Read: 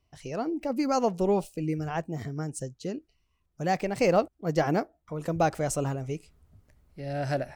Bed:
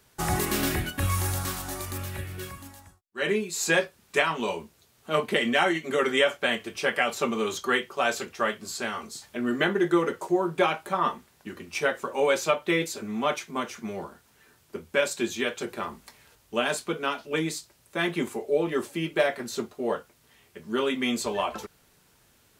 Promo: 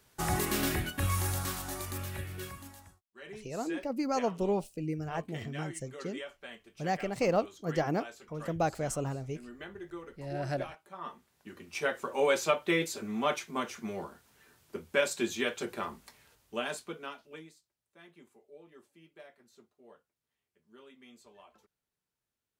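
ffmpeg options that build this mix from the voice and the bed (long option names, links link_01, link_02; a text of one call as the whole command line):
ffmpeg -i stem1.wav -i stem2.wav -filter_complex "[0:a]adelay=3200,volume=-5dB[link_01];[1:a]volume=13.5dB,afade=type=out:start_time=2.97:duration=0.24:silence=0.141254,afade=type=in:start_time=10.9:duration=1.31:silence=0.133352,afade=type=out:start_time=15.79:duration=1.76:silence=0.0530884[link_02];[link_01][link_02]amix=inputs=2:normalize=0" out.wav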